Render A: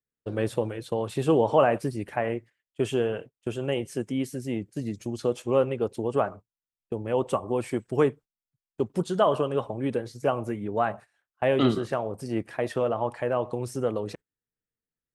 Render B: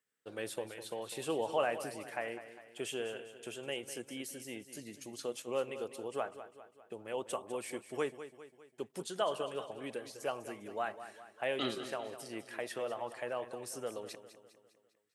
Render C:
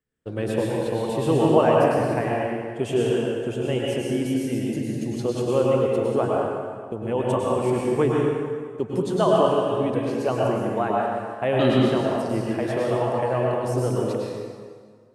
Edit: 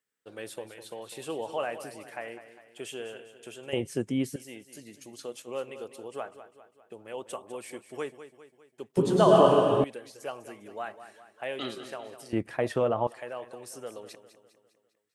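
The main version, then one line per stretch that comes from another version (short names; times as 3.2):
B
3.73–4.36 from A
8.97–9.84 from C
12.33–13.07 from A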